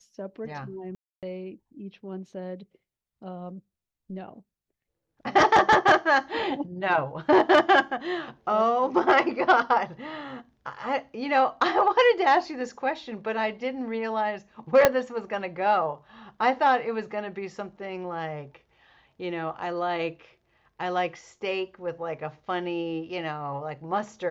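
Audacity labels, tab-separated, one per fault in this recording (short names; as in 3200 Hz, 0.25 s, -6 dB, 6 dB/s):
0.950000	1.230000	gap 0.277 s
14.850000	14.850000	pop -3 dBFS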